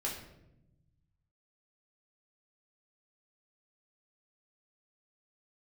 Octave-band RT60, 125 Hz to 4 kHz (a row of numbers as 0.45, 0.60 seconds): 2.0, 1.5, 1.0, 0.70, 0.65, 0.55 seconds